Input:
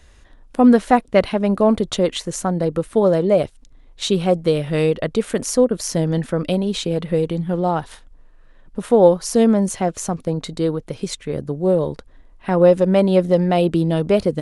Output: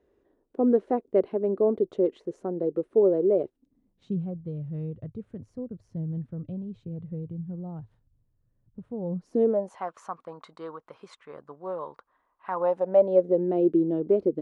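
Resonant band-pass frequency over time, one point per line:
resonant band-pass, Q 3.9
0:03.42 390 Hz
0:04.34 110 Hz
0:09.05 110 Hz
0:09.31 280 Hz
0:09.82 1,100 Hz
0:12.50 1,100 Hz
0:13.44 360 Hz

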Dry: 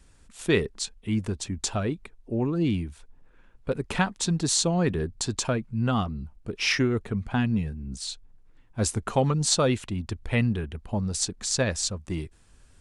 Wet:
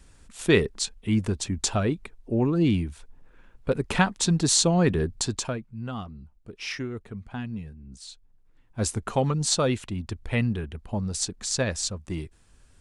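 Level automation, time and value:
0:05.18 +3 dB
0:05.74 −9 dB
0:08.10 −9 dB
0:08.82 −1 dB

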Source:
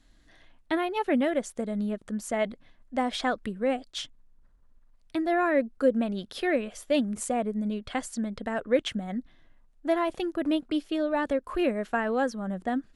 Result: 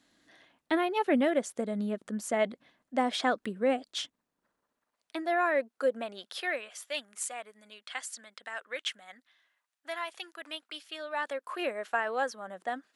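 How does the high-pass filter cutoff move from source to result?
0:03.85 210 Hz
0:05.37 580 Hz
0:05.97 580 Hz
0:07.11 1,400 Hz
0:10.81 1,400 Hz
0:11.62 640 Hz

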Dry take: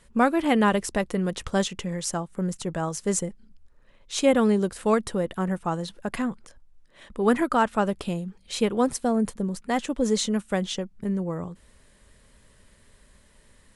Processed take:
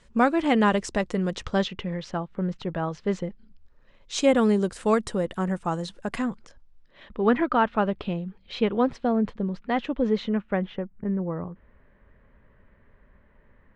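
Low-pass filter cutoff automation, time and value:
low-pass filter 24 dB per octave
0:01.32 7,400 Hz
0:01.77 3,800 Hz
0:03.17 3,800 Hz
0:04.39 8,900 Hz
0:06.14 8,900 Hz
0:07.21 3,700 Hz
0:09.83 3,700 Hz
0:10.90 2,000 Hz

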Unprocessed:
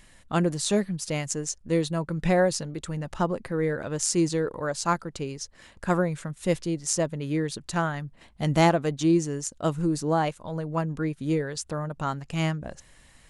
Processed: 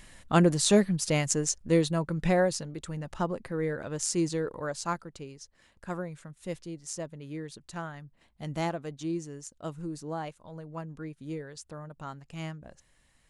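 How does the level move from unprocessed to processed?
0:01.48 +2.5 dB
0:02.64 −4.5 dB
0:04.66 −4.5 dB
0:05.38 −11.5 dB

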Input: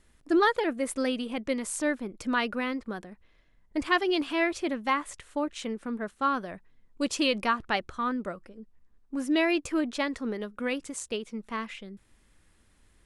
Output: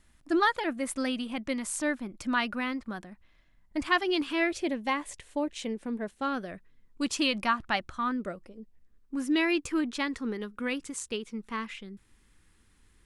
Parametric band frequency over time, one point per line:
parametric band −10.5 dB 0.46 octaves
0:04.00 450 Hz
0:04.68 1,300 Hz
0:06.12 1,300 Hz
0:07.33 440 Hz
0:08.02 440 Hz
0:08.48 1,700 Hz
0:09.18 620 Hz

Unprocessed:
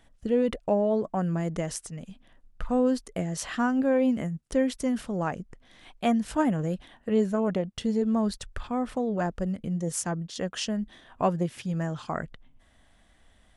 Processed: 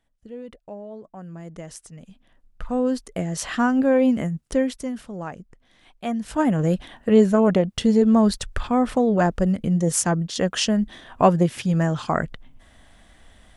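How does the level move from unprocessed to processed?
0:01.04 −13 dB
0:01.89 −4 dB
0:03.54 +5.5 dB
0:04.48 +5.5 dB
0:04.97 −3.5 dB
0:06.05 −3.5 dB
0:06.69 +9 dB

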